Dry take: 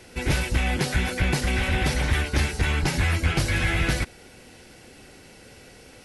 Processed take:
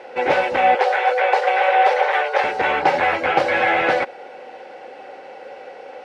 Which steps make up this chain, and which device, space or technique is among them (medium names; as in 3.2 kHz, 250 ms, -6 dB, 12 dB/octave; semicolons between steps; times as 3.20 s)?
tin-can telephone (band-pass 490–2200 Hz; small resonant body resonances 550/770 Hz, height 14 dB, ringing for 30 ms); 0.75–2.44 s: elliptic high-pass 420 Hz, stop band 40 dB; trim +8.5 dB